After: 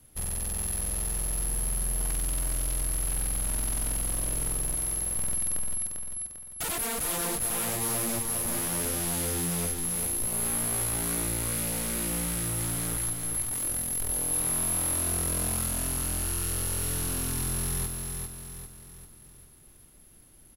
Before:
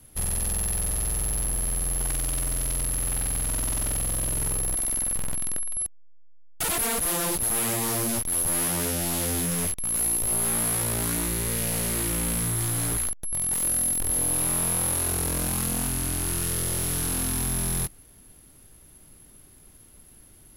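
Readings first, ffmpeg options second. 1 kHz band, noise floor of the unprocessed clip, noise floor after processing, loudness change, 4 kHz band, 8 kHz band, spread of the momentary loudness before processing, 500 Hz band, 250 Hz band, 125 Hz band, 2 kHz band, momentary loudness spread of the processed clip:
-3.5 dB, -52 dBFS, -53 dBFS, -3.5 dB, -3.5 dB, -3.0 dB, 4 LU, -3.5 dB, -4.0 dB, -3.5 dB, -3.5 dB, 5 LU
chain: -af "aecho=1:1:397|794|1191|1588|1985|2382:0.562|0.264|0.124|0.0584|0.0274|0.0129,volume=-5dB"

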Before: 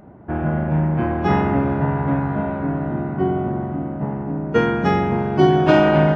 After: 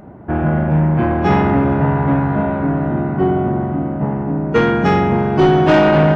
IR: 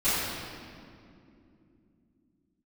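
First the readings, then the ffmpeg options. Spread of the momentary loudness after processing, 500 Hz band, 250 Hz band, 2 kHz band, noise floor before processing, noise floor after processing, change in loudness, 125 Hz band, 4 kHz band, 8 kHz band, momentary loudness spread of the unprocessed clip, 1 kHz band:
9 LU, +3.5 dB, +4.0 dB, +4.0 dB, -28 dBFS, -23 dBFS, +4.0 dB, +4.5 dB, +3.5 dB, n/a, 11 LU, +4.0 dB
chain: -af "asoftclip=type=tanh:threshold=-12dB,volume=6dB"

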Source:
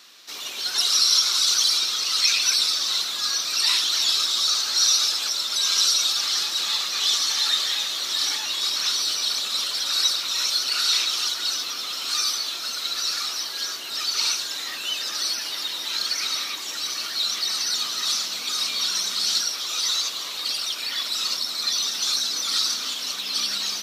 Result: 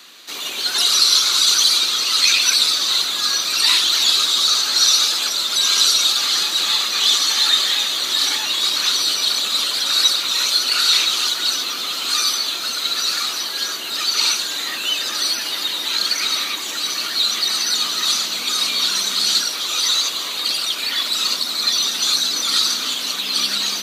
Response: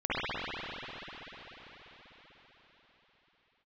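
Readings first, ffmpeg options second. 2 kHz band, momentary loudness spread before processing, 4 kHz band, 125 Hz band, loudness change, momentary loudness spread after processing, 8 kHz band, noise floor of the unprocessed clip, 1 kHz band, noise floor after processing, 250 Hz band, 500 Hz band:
+7.0 dB, 9 LU, +6.0 dB, n/a, +5.5 dB, 8 LU, +4.5 dB, -32 dBFS, +7.0 dB, -26 dBFS, +9.5 dB, +8.0 dB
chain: -filter_complex "[0:a]highpass=f=260:p=1,bandreject=f=5.4k:w=5.1,acrossover=split=350|430|5500[a][b][c][d];[a]acontrast=79[e];[e][b][c][d]amix=inputs=4:normalize=0,volume=7dB"

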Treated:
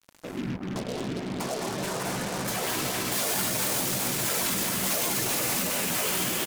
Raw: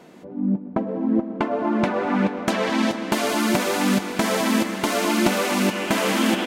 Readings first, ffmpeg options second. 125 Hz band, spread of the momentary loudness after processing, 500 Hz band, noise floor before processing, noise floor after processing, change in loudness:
-4.5 dB, 8 LU, -9.0 dB, -38 dBFS, -38 dBFS, -5.0 dB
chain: -filter_complex "[0:a]afftfilt=real='hypot(re,im)*cos(2*PI*random(0))':imag='hypot(re,im)*sin(2*PI*random(1))':win_size=512:overlap=0.75,aecho=1:1:215.7|268.2:0.355|0.447,adynamicequalizer=threshold=0.00794:dfrequency=280:dqfactor=2.8:tfrequency=280:tqfactor=2.8:attack=5:release=100:ratio=0.375:range=2.5:mode=cutabove:tftype=bell,acontrast=41,alimiter=limit=-18dB:level=0:latency=1:release=25,acompressor=threshold=-31dB:ratio=2.5,asplit=2[a][b];[b]adelay=16,volume=-8dB[c];[a][c]amix=inputs=2:normalize=0,acrusher=bits=5:mix=0:aa=0.5,crystalizer=i=2.5:c=0,equalizer=f=10k:t=o:w=2.4:g=2.5,volume=-1.5dB"

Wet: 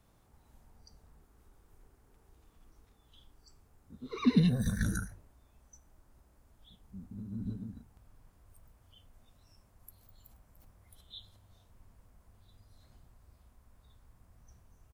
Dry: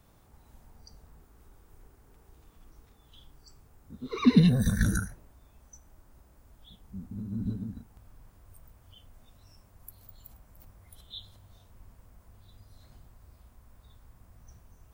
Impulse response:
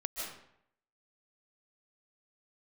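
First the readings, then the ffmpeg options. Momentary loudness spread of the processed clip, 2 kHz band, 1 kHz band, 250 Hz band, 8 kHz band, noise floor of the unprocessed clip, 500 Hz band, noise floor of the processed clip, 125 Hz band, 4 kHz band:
24 LU, -5.5 dB, -5.5 dB, -5.5 dB, -5.5 dB, -60 dBFS, -5.5 dB, -67 dBFS, -5.5 dB, -5.5 dB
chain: -af "bandreject=f=47.06:t=h:w=4,bandreject=f=94.12:t=h:w=4,bandreject=f=141.18:t=h:w=4,aresample=32000,aresample=44100,volume=-5.5dB"

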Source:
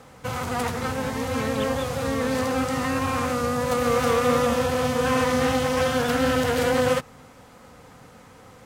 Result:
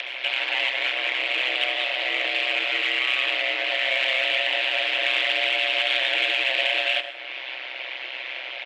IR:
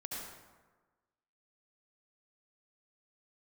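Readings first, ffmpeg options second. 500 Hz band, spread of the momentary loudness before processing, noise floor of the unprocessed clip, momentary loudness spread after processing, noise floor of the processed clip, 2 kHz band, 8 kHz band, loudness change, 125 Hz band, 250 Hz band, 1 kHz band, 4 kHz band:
-9.5 dB, 6 LU, -49 dBFS, 11 LU, -35 dBFS, +8.5 dB, under -10 dB, +1.5 dB, under -40 dB, -21.0 dB, -8.0 dB, +12.0 dB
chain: -filter_complex "[0:a]aeval=exprs='(tanh(28.2*val(0)+0.65)-tanh(0.65))/28.2':c=same,highpass=f=330:t=q:w=0.5412,highpass=f=330:t=q:w=1.307,lowpass=f=2.9k:t=q:w=0.5176,lowpass=f=2.9k:t=q:w=0.7071,lowpass=f=2.9k:t=q:w=1.932,afreqshift=130,aecho=1:1:4.9:0.5,acompressor=mode=upward:threshold=-36dB:ratio=2.5,aexciter=amount=9:drive=9.6:freq=2.1k,acompressor=threshold=-28dB:ratio=1.5,asplit=2[a][b];[1:a]atrim=start_sample=2205,lowshelf=f=200:g=9[c];[b][c]afir=irnorm=-1:irlink=0,volume=-7dB[d];[a][d]amix=inputs=2:normalize=0,aeval=exprs='val(0)*sin(2*PI*64*n/s)':c=same,volume=2dB"

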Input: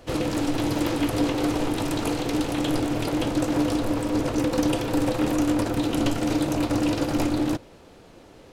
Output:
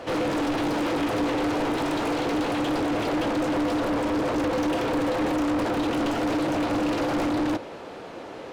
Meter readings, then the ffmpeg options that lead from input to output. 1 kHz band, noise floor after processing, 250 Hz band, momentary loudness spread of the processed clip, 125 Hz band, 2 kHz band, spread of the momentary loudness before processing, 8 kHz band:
+3.5 dB, -39 dBFS, -1.5 dB, 2 LU, -6.0 dB, +3.0 dB, 3 LU, -6.0 dB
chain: -filter_complex "[0:a]asplit=2[a][b];[b]highpass=f=720:p=1,volume=31dB,asoftclip=type=tanh:threshold=-9.5dB[c];[a][c]amix=inputs=2:normalize=0,lowpass=f=1.3k:p=1,volume=-6dB,volume=-7.5dB"

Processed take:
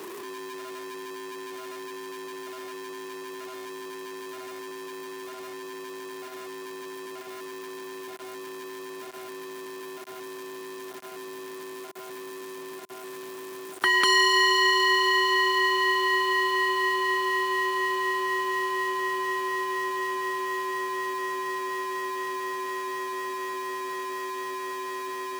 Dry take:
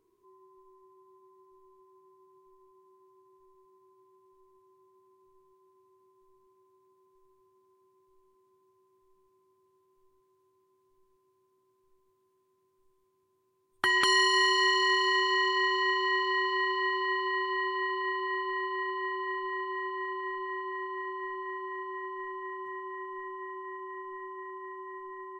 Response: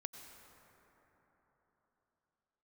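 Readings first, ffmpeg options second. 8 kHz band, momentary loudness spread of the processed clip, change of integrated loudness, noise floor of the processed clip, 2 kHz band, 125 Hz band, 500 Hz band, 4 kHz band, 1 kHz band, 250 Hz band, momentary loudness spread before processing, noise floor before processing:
+7.5 dB, 19 LU, +4.0 dB, -40 dBFS, +4.5 dB, n/a, +5.5 dB, +4.0 dB, +5.0 dB, +6.0 dB, 18 LU, -73 dBFS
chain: -filter_complex "[0:a]aeval=exprs='val(0)+0.5*0.0158*sgn(val(0))':c=same,acrossover=split=150|700|1900[a][b][c][d];[a]acrusher=bits=4:mix=0:aa=0.000001[e];[e][b][c][d]amix=inputs=4:normalize=0,volume=3dB"

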